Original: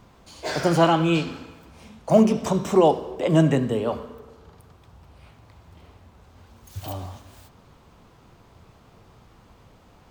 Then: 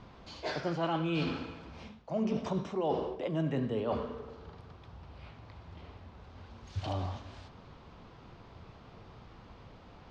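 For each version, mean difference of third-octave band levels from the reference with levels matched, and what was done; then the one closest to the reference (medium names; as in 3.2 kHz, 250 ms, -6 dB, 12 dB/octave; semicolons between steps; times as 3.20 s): 8.0 dB: low-pass 5.1 kHz 24 dB/octave; reverse; compression 10:1, threshold -29 dBFS, peak gain reduction 18.5 dB; reverse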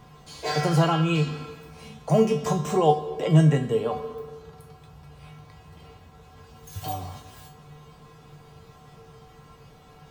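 3.5 dB: in parallel at +2 dB: compression, threshold -32 dBFS, peak gain reduction 19.5 dB; on the sum: feedback comb 150 Hz, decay 0.3 s, harmonics odd, mix 90%; trim +9 dB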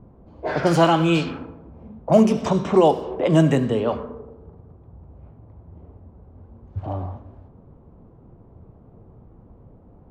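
4.5 dB: level-controlled noise filter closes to 470 Hz, open at -16 dBFS; in parallel at 0 dB: compression, threshold -29 dBFS, peak gain reduction 17 dB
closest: second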